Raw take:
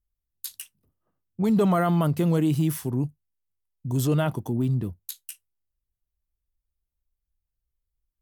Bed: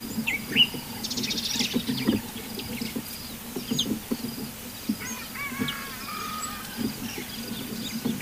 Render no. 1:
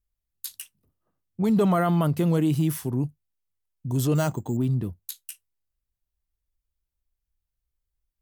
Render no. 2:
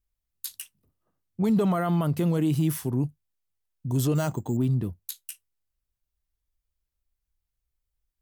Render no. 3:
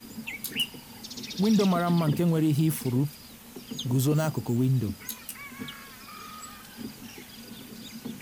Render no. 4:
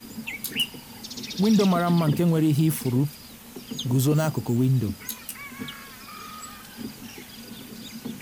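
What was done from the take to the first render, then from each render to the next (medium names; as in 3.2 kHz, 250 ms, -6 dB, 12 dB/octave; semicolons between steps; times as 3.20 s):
4.15–4.57 s: careless resampling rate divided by 6×, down filtered, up hold
peak limiter -16.5 dBFS, peak gain reduction 4.5 dB
add bed -9.5 dB
trim +3 dB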